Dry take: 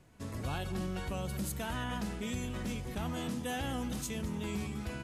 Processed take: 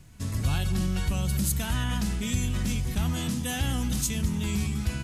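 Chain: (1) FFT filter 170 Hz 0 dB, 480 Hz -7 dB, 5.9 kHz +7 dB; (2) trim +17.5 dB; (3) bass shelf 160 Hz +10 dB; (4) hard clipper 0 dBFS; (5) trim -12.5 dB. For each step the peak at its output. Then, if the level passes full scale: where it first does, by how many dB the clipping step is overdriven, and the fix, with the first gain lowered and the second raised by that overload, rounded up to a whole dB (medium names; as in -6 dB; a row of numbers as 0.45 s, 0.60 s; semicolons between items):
-21.0 dBFS, -3.5 dBFS, -2.0 dBFS, -2.0 dBFS, -14.5 dBFS; nothing clips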